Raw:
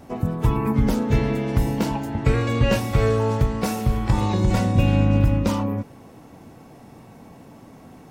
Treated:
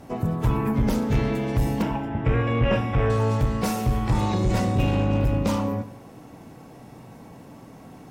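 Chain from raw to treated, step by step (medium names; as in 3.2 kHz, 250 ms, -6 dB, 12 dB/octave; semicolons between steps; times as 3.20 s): Chebyshev shaper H 5 -16 dB, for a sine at -6.5 dBFS; 1.82–3.10 s: Savitzky-Golay filter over 25 samples; gated-style reverb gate 270 ms falling, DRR 10 dB; trim -5 dB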